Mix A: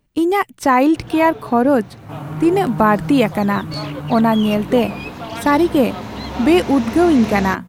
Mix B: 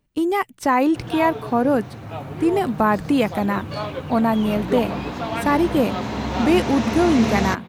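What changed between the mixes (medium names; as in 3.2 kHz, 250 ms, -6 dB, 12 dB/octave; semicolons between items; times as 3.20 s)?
speech -4.5 dB; first sound: send on; second sound -9.5 dB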